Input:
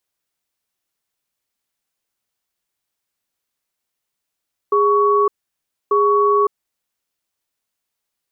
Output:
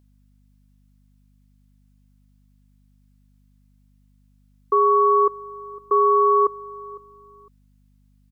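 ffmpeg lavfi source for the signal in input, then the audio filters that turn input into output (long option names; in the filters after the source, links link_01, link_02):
-f lavfi -i "aevalsrc='0.188*(sin(2*PI*411*t)+sin(2*PI*1120*t))*clip(min(mod(t,1.19),0.56-mod(t,1.19))/0.005,0,1)':duration=2.24:sample_rate=44100"
-af "aeval=exprs='val(0)+0.00355*(sin(2*PI*50*n/s)+sin(2*PI*2*50*n/s)/2+sin(2*PI*3*50*n/s)/3+sin(2*PI*4*50*n/s)/4+sin(2*PI*5*50*n/s)/5)':channel_layout=same,lowshelf=frequency=310:gain=-8.5,aecho=1:1:506|1012:0.0944|0.0236"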